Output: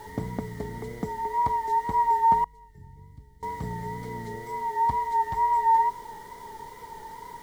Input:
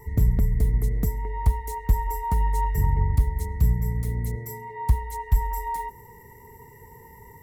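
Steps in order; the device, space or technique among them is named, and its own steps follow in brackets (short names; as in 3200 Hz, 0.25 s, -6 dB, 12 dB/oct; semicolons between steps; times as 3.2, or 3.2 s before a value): horn gramophone (BPF 250–3500 Hz; bell 880 Hz +9 dB 0.49 oct; wow and flutter; pink noise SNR 25 dB); notch 2600 Hz, Q 5; 2.44–3.43 passive tone stack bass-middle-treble 10-0-1; gain +2 dB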